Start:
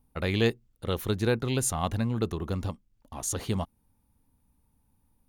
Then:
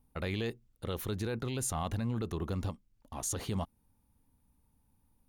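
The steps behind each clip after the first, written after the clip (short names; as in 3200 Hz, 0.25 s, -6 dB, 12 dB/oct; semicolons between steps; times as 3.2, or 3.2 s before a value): limiter -22.5 dBFS, peak gain reduction 10.5 dB; gain -2 dB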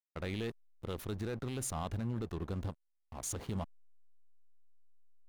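backlash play -37.5 dBFS; gain -2.5 dB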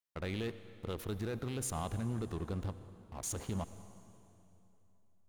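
reverb RT60 3.0 s, pre-delay 68 ms, DRR 13 dB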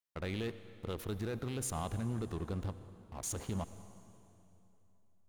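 nothing audible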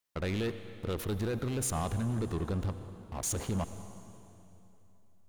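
soft clip -33 dBFS, distortion -15 dB; gain +7.5 dB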